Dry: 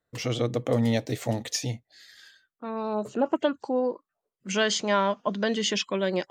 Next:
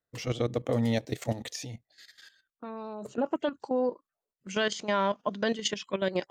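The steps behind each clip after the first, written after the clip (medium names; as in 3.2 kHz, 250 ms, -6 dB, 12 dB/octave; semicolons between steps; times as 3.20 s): level held to a coarse grid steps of 13 dB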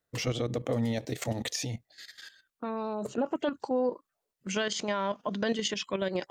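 peak limiter -25.5 dBFS, peak gain reduction 11 dB; trim +5.5 dB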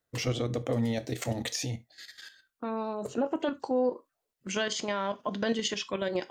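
gated-style reverb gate 100 ms falling, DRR 11.5 dB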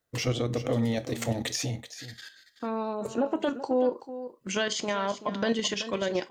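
delay 380 ms -13 dB; trim +2 dB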